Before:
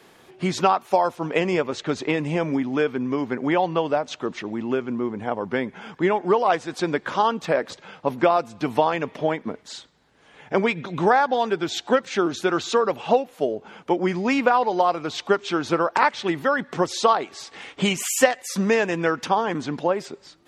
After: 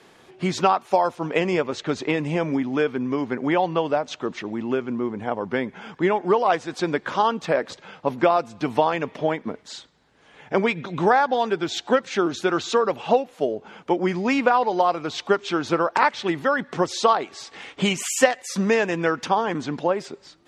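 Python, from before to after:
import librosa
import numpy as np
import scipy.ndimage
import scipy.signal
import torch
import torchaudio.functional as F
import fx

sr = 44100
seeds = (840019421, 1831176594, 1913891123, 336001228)

y = scipy.signal.sosfilt(scipy.signal.butter(2, 9600.0, 'lowpass', fs=sr, output='sos'), x)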